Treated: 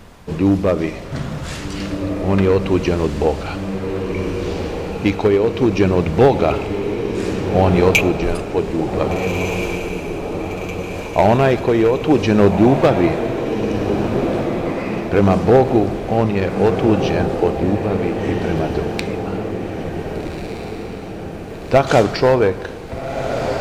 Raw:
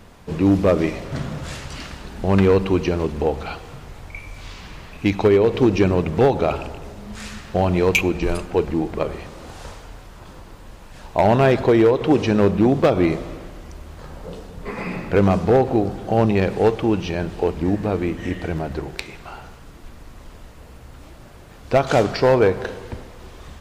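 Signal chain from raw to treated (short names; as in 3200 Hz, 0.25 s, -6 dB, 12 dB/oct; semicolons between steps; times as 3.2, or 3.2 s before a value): tremolo 0.64 Hz, depth 40%; on a send: diffused feedback echo 1.576 s, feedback 53%, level -6 dB; on the sum: gain +4 dB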